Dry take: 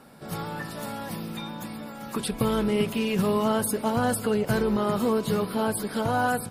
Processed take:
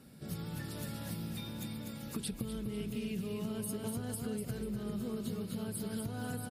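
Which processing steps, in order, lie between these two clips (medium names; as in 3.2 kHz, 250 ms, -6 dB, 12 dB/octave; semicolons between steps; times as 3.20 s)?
amplifier tone stack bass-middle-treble 10-0-1; on a send: feedback delay 246 ms, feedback 40%, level -5 dB; on the sum: compression 6:1, threshold -49 dBFS, peak gain reduction 13.5 dB; high-pass 47 Hz; bass shelf 180 Hz -6.5 dB; trim +16.5 dB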